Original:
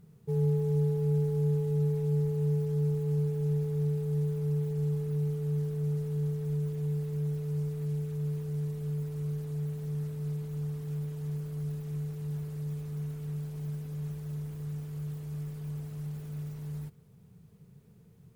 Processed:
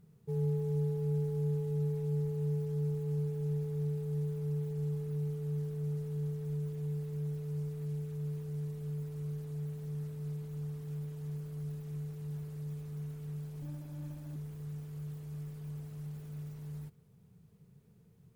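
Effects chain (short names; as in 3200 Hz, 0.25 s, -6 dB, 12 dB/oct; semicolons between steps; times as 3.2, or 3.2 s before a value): 13.62–14.36 minimum comb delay 1.2 ms; gain -5 dB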